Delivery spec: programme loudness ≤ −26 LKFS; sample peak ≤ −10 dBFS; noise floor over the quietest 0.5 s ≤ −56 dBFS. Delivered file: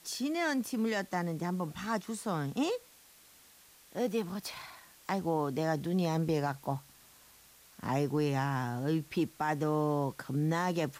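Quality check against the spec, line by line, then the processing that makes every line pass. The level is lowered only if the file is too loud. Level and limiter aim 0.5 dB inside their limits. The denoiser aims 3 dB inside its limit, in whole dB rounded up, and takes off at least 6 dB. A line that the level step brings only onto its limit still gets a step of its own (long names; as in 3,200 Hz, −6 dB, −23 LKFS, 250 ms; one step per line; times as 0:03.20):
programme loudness −33.5 LKFS: in spec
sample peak −19.5 dBFS: in spec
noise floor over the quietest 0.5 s −59 dBFS: in spec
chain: no processing needed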